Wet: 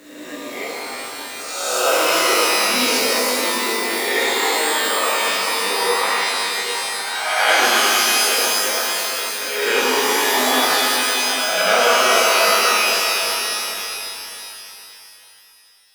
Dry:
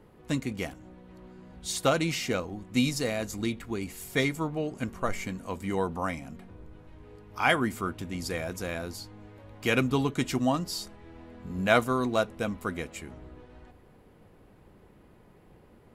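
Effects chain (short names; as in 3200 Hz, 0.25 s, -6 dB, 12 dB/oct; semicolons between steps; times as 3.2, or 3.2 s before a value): spectral swells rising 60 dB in 1.30 s; spectral noise reduction 11 dB; in parallel at 0 dB: compressor 6:1, threshold -36 dBFS, peak gain reduction 20 dB; on the sum: HPF 280 Hz 24 dB/oct; on a send: darkening echo 0.801 s, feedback 18%, low-pass 1100 Hz, level -9.5 dB; on the sum: requantised 8-bit, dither none; shimmer reverb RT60 2.9 s, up +12 st, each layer -2 dB, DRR -6.5 dB; gain -2.5 dB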